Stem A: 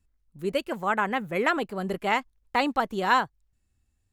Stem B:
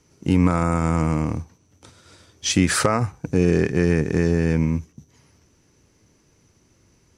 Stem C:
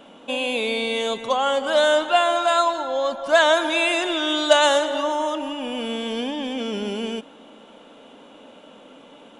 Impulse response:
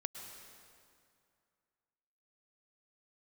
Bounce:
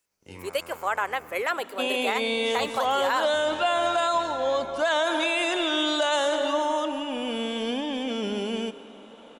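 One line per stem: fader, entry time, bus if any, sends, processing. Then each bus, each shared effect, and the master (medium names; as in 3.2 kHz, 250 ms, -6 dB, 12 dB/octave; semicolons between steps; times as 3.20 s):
-0.5 dB, 0.00 s, send -15.5 dB, high-pass 450 Hz 24 dB/octave; treble shelf 6.2 kHz +10 dB
-17.0 dB, 0.00 s, no send, spectral peaks clipped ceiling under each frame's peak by 19 dB; feedback comb 100 Hz, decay 0.33 s, harmonics all, mix 80%
-4.5 dB, 1.50 s, send -6.5 dB, none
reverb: on, RT60 2.3 s, pre-delay 98 ms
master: peak limiter -15 dBFS, peak gain reduction 11.5 dB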